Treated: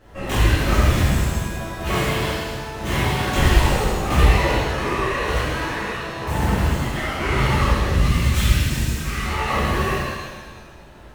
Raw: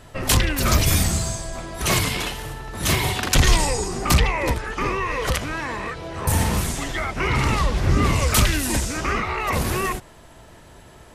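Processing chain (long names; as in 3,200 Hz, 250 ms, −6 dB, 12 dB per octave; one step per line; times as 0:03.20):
running median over 9 samples
0:07.88–0:09.25: drawn EQ curve 180 Hz 0 dB, 430 Hz −16 dB, 3,900 Hz +3 dB
reverb with rising layers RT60 1.4 s, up +7 semitones, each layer −8 dB, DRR −10.5 dB
level −9 dB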